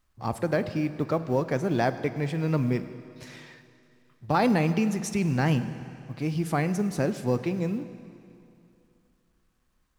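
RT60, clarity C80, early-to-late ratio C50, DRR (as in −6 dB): 2.7 s, 13.0 dB, 12.0 dB, 11.5 dB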